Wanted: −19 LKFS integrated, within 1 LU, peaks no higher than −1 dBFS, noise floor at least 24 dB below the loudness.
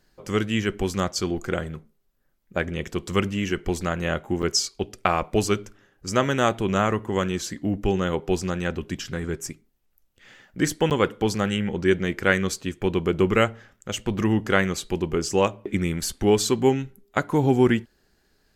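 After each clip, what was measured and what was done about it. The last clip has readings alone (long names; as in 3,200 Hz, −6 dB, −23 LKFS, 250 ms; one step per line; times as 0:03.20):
number of dropouts 2; longest dropout 8.8 ms; integrated loudness −24.5 LKFS; sample peak −2.0 dBFS; target loudness −19.0 LKFS
→ repair the gap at 0:04.42/0:10.90, 8.8 ms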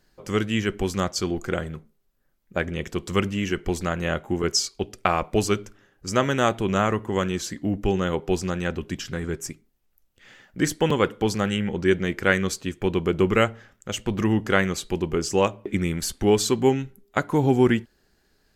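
number of dropouts 0; integrated loudness −24.5 LKFS; sample peak −2.0 dBFS; target loudness −19.0 LKFS
→ level +5.5 dB
brickwall limiter −1 dBFS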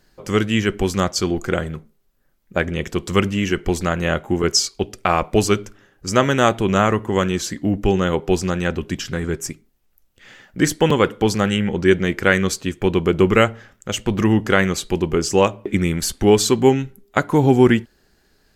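integrated loudness −19.0 LKFS; sample peak −1.0 dBFS; background noise floor −61 dBFS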